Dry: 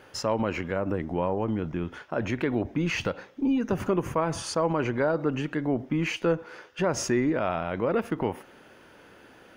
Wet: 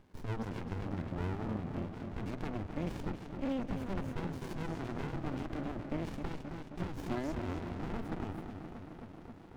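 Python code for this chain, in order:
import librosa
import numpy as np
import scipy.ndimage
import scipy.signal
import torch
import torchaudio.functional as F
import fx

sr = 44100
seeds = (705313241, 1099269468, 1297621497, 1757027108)

y = fx.echo_tape(x, sr, ms=263, feedback_pct=81, wet_db=-7.0, lp_hz=3100.0, drive_db=13.0, wow_cents=30)
y = fx.running_max(y, sr, window=65)
y = F.gain(torch.from_numpy(y), -7.0).numpy()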